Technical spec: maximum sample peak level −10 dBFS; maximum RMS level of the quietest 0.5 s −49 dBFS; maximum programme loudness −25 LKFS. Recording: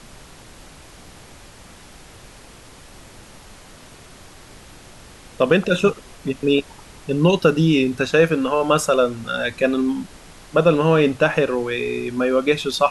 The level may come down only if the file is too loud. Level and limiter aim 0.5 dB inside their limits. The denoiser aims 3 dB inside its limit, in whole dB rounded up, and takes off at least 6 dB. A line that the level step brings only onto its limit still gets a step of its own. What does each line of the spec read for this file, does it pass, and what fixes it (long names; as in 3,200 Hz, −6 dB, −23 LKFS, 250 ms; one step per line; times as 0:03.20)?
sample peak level −3.5 dBFS: out of spec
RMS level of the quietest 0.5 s −43 dBFS: out of spec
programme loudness −19.0 LKFS: out of spec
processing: level −6.5 dB
brickwall limiter −10.5 dBFS